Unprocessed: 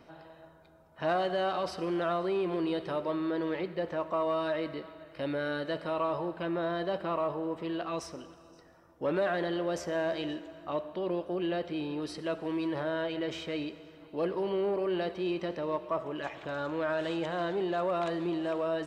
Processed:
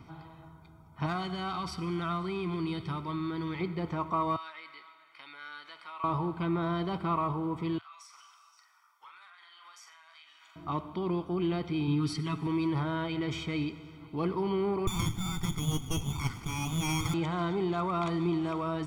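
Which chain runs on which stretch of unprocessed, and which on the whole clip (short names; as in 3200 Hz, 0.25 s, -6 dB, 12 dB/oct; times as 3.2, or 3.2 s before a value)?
1.06–3.61 bell 530 Hz -7.5 dB 2.1 oct + hard clip -24.5 dBFS
4.36–6.04 high shelf 6000 Hz -7 dB + compressor 2:1, threshold -34 dBFS + HPF 1400 Hz
7.78–10.56 HPF 1200 Hz 24 dB/oct + compressor 10:1, threshold -52 dBFS + doubler 44 ms -6 dB
11.87–12.47 bell 590 Hz -11.5 dB 0.83 oct + comb 7.2 ms, depth 96%
14.87–17.14 inverted band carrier 3900 Hz + running maximum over 9 samples
whole clip: bell 110 Hz +11.5 dB 1.1 oct; comb 0.9 ms, depth 81%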